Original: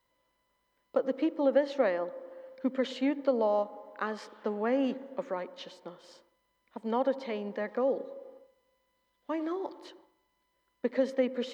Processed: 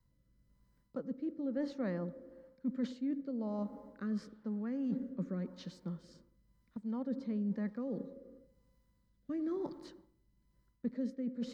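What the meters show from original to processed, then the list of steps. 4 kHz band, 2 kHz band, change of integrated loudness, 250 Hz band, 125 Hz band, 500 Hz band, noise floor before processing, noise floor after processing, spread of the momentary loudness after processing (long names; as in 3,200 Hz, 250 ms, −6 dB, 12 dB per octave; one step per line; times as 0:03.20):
−13.0 dB, −14.5 dB, −7.5 dB, −2.5 dB, can't be measured, −14.0 dB, −77 dBFS, −75 dBFS, 11 LU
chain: drawn EQ curve 170 Hz 0 dB, 360 Hz −19 dB, 740 Hz −28 dB, 1,400 Hz −21 dB, 3,000 Hz −30 dB, 4,500 Hz −20 dB
reversed playback
downward compressor 12 to 1, threshold −50 dBFS, peak gain reduction 14.5 dB
reversed playback
rotating-speaker cabinet horn 1 Hz
level +18 dB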